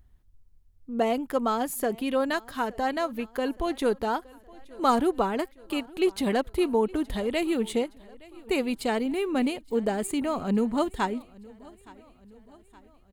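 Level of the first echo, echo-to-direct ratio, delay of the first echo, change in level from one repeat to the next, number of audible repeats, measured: -23.0 dB, -21.5 dB, 0.868 s, -5.0 dB, 3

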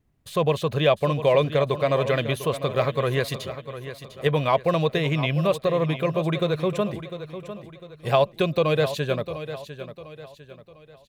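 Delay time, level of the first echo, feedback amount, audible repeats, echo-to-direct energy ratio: 0.701 s, -12.0 dB, 39%, 3, -11.5 dB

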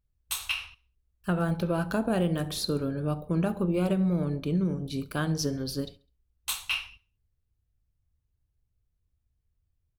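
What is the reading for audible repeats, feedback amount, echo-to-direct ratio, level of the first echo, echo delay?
2, 41%, -22.0 dB, -23.0 dB, 68 ms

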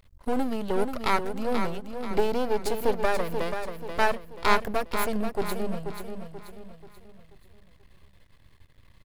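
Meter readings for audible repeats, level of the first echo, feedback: 4, -7.5 dB, 42%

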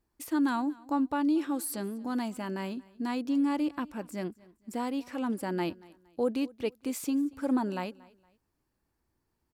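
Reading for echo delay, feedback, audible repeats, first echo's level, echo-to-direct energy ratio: 0.232 s, 33%, 2, -23.0 dB, -22.5 dB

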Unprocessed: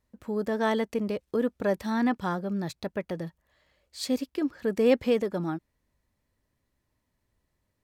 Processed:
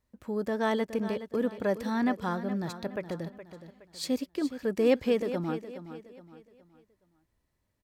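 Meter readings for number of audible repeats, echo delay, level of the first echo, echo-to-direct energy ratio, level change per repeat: 3, 0.418 s, -12.0 dB, -11.5 dB, -8.5 dB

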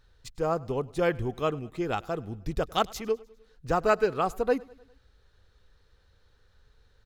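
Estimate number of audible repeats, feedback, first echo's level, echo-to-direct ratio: 3, 57%, -24.0 dB, -22.5 dB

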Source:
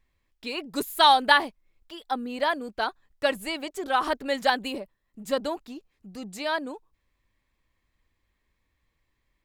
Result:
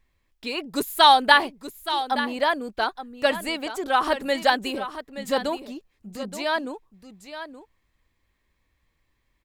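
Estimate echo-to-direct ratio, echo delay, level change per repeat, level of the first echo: -11.5 dB, 0.874 s, no steady repeat, -11.5 dB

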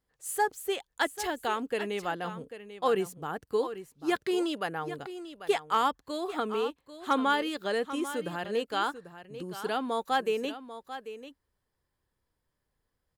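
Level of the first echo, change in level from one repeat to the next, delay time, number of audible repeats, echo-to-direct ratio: -12.5 dB, no steady repeat, 0.792 s, 1, -12.5 dB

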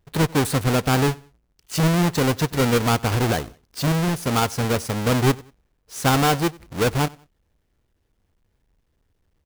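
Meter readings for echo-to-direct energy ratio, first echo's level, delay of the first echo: -23.5 dB, -24.0 dB, 93 ms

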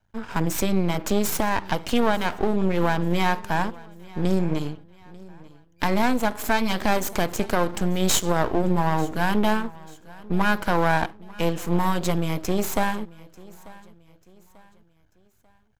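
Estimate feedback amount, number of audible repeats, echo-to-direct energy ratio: 39%, 2, -21.5 dB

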